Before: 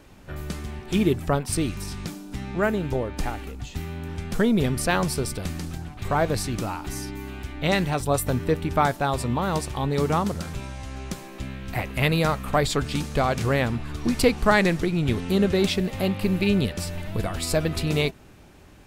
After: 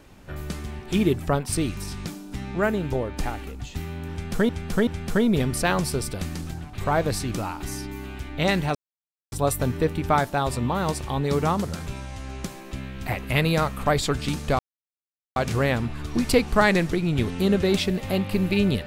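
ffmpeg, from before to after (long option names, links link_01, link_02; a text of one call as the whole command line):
ffmpeg -i in.wav -filter_complex "[0:a]asplit=5[link_01][link_02][link_03][link_04][link_05];[link_01]atrim=end=4.492[link_06];[link_02]atrim=start=4.108:end=4.492[link_07];[link_03]atrim=start=4.108:end=7.99,asetpts=PTS-STARTPTS,afade=type=out:start_time=3.878:duration=0.004:curve=hsin,apad=pad_dur=0.57[link_08];[link_04]atrim=start=7.99:end=13.26,asetpts=PTS-STARTPTS,afade=type=in:duration=0.004:curve=hsin,afade=type=out:start_time=5.266:duration=0.004:curve=hsin,apad=pad_dur=0.77[link_09];[link_05]atrim=start=13.26,asetpts=PTS-STARTPTS,afade=type=in:duration=0.004:curve=hsin[link_10];[link_06][link_07]acrossfade=duration=0.004:curve1=hsin:curve2=hsin[link_11];[link_08][link_09][link_10]concat=n=3:v=0:a=1[link_12];[link_11][link_12]acrossfade=duration=0.004:curve1=hsin:curve2=hsin" out.wav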